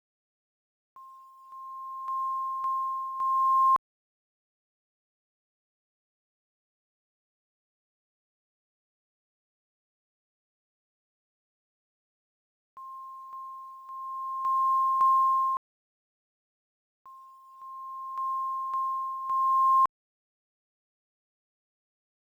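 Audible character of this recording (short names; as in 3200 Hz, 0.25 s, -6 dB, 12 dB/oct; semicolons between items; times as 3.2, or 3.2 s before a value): tremolo triangle 0.56 Hz, depth 75%; a quantiser's noise floor 12-bit, dither none; IMA ADPCM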